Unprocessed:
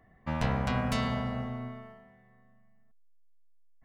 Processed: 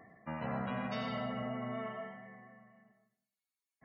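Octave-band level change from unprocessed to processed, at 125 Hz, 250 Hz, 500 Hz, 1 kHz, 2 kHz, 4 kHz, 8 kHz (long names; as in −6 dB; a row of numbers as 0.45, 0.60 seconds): −11.0 dB, −6.0 dB, −2.5 dB, −5.0 dB, −5.5 dB, −7.0 dB, below −20 dB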